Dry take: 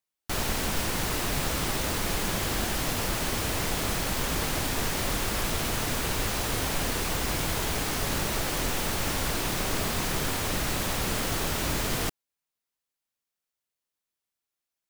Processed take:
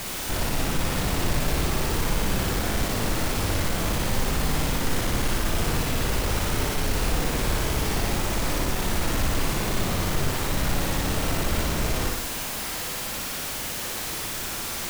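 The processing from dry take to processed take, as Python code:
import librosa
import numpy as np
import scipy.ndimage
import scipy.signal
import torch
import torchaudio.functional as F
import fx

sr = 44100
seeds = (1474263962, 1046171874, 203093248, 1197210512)

y = np.sign(x) * np.sqrt(np.mean(np.square(x)))
y = fx.tilt_eq(y, sr, slope=-1.5)
y = fx.room_flutter(y, sr, wall_m=10.1, rt60_s=0.96)
y = y * 10.0 ** (1.0 / 20.0)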